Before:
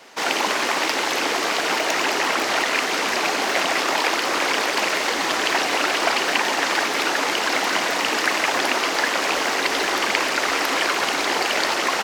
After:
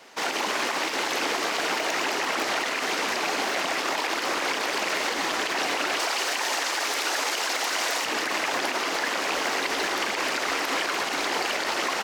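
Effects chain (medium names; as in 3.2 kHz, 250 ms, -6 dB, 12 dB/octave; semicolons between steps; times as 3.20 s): 5.99–8.06 s: tone controls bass -15 dB, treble +6 dB; peak limiter -13 dBFS, peak gain reduction 9.5 dB; trim -3.5 dB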